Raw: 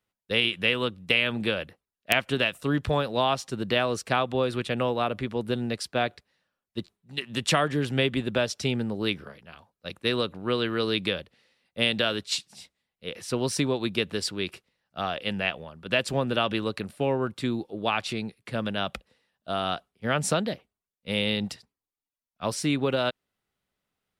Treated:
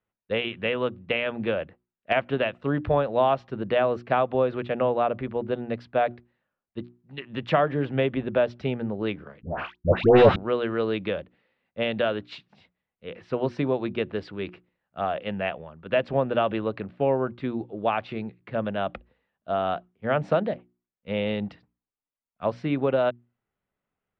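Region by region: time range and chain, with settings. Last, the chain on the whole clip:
0:09.42–0:10.36: parametric band 99 Hz +8 dB 0.7 octaves + leveller curve on the samples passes 5 + all-pass dispersion highs, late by 132 ms, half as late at 1,000 Hz
whole clip: Bessel low-pass filter 1,900 Hz, order 4; mains-hum notches 60/120/180/240/300/360 Hz; dynamic equaliser 630 Hz, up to +6 dB, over −39 dBFS, Q 1.7

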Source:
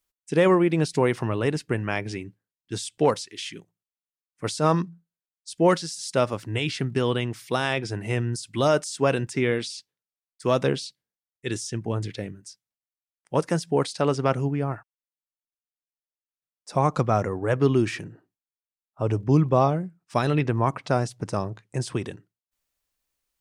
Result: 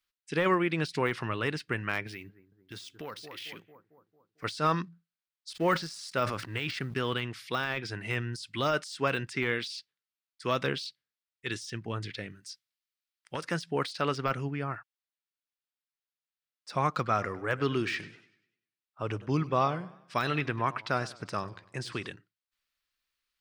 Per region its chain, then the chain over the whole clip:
0:02.07–0:04.44: bucket-brigade delay 224 ms, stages 2,048, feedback 54%, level −18.5 dB + downward compressor 3 to 1, threshold −33 dBFS + bad sample-rate conversion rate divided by 3×, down none, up hold
0:05.50–0:07.14: mu-law and A-law mismatch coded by A + dynamic equaliser 3,400 Hz, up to −5 dB, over −45 dBFS, Q 1.2 + level that may fall only so fast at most 75 dB per second
0:12.30–0:13.45: high-shelf EQ 2,800 Hz +8 dB + downward compressor 10 to 1, threshold −22 dBFS
0:16.90–0:22.10: low-shelf EQ 120 Hz −5 dB + feedback echo with a swinging delay time 98 ms, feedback 43%, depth 132 cents, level −18 dB
whole clip: flat-topped bell 2,400 Hz +10.5 dB 2.4 octaves; de-essing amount 65%; level −8.5 dB

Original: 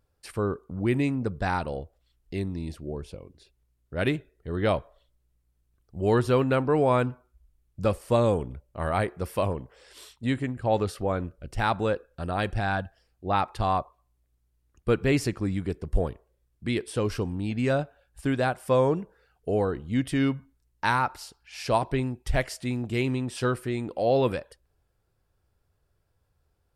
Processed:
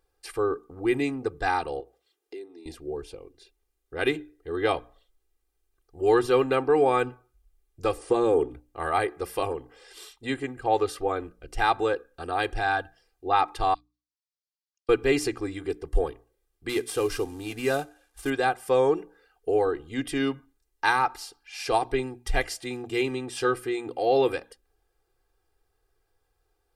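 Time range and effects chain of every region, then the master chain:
0:01.80–0:02.66: downward compressor 10 to 1, threshold −39 dBFS + high-pass with resonance 380 Hz, resonance Q 2.2
0:07.98–0:08.50: parametric band 340 Hz +9 dB 2 octaves + downward compressor, threshold −17 dBFS + linear-phase brick-wall low-pass 11,000 Hz
0:13.74–0:14.89: four-pole ladder band-pass 5,400 Hz, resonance 50% + high-frequency loss of the air 57 metres
0:16.69–0:18.30: variable-slope delta modulation 64 kbit/s + high-shelf EQ 9,500 Hz +6.5 dB
whole clip: parametric band 90 Hz −13.5 dB 1.7 octaves; mains-hum notches 60/120/180/240/300 Hz; comb filter 2.5 ms, depth 88%

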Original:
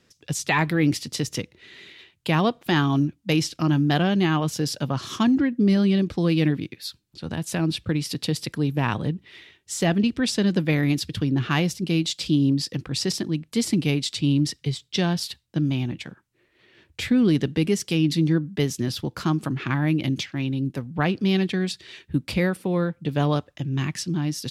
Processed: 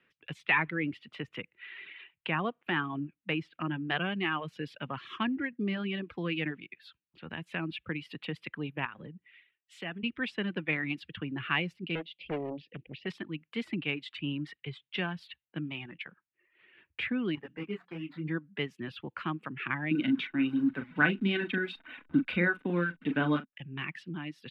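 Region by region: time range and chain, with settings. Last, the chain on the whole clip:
0:00.66–0:03.85: high-shelf EQ 3,300 Hz −10.5 dB + one half of a high-frequency compander encoder only
0:08.85–0:10.03: downward compressor 12 to 1, threshold −25 dBFS + multiband upward and downward expander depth 70%
0:11.95–0:13.06: Chebyshev band-stop filter 590–2,600 Hz + high-frequency loss of the air 240 metres + highs frequency-modulated by the lows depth 0.95 ms
0:17.35–0:18.28: running median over 15 samples + mains-hum notches 60/120/180/240/300 Hz + micro pitch shift up and down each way 26 cents
0:19.91–0:23.53: hold until the input has moved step −37.5 dBFS + double-tracking delay 40 ms −7 dB + hollow resonant body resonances 260/1,500/3,700 Hz, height 15 dB
whole clip: three-way crossover with the lows and the highs turned down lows −20 dB, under 260 Hz, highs −13 dB, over 2,200 Hz; reverb reduction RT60 0.75 s; drawn EQ curve 170 Hz 0 dB, 270 Hz −8 dB, 660 Hz −11 dB, 2,800 Hz +6 dB, 5,800 Hz −22 dB

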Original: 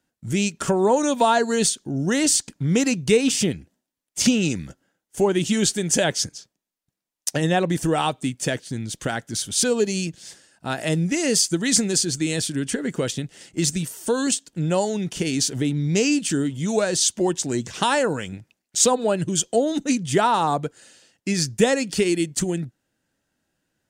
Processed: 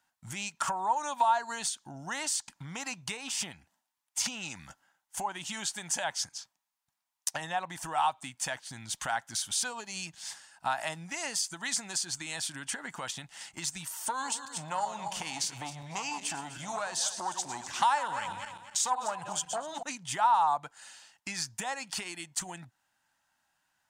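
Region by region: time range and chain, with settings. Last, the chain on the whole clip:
0:14.08–0:19.83: feedback delay that plays each chunk backwards 125 ms, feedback 54%, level −11 dB + saturating transformer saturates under 810 Hz
whole clip: dynamic equaliser 810 Hz, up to +5 dB, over −35 dBFS, Q 0.71; downward compressor 4 to 1, threshold −30 dBFS; low shelf with overshoot 620 Hz −12 dB, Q 3

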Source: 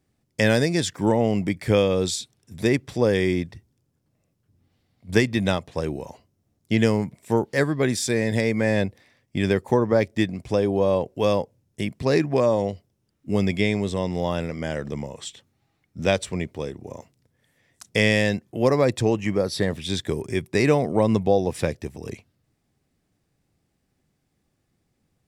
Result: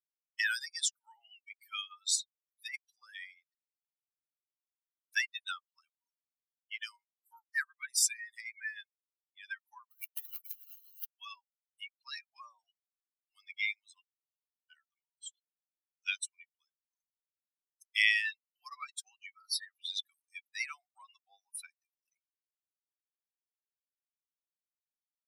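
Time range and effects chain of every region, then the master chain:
0:09.91–0:11.07: one scale factor per block 3 bits + Butterworth high-pass 260 Hz 72 dB per octave + compressor whose output falls as the input rises −30 dBFS
0:14.00–0:14.70: gate with flip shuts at −19 dBFS, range −28 dB + four-pole ladder band-pass 2,900 Hz, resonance 70% + envelope flattener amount 50%
whole clip: spectral dynamics exaggerated over time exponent 3; Butterworth high-pass 1,300 Hz 48 dB per octave; high-shelf EQ 7,100 Hz +10 dB

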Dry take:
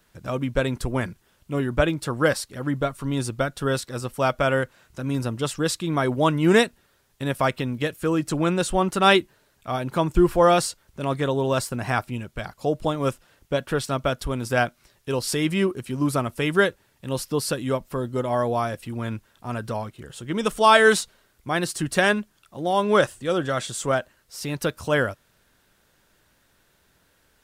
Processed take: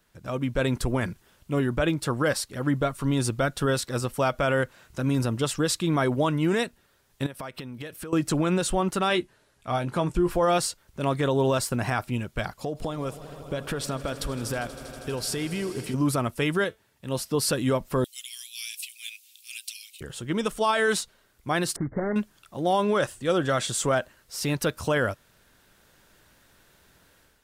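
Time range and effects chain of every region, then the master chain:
0:07.26–0:08.13: downward compressor 16 to 1, threshold −35 dBFS + low-shelf EQ 190 Hz −4.5 dB + notch filter 7,000 Hz, Q 9.2
0:09.08–0:10.30: Chebyshev low-pass filter 11,000 Hz, order 3 + double-tracking delay 17 ms −9 dB
0:12.59–0:15.94: downward compressor 8 to 1, threshold −30 dBFS + echo that builds up and dies away 80 ms, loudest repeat 5, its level −18 dB
0:16.64–0:17.35: high-pass filter 43 Hz + tuned comb filter 220 Hz, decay 0.24 s, mix 40%
0:18.04–0:20.01: Chebyshev high-pass filter 2,400 Hz, order 5 + high-shelf EQ 4,200 Hz +11 dB
0:21.76–0:22.16: running median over 41 samples + linear-phase brick-wall low-pass 2,200 Hz + downward compressor 5 to 1, threshold −26 dBFS
whole clip: automatic gain control gain up to 8.5 dB; brickwall limiter −10 dBFS; level −4.5 dB

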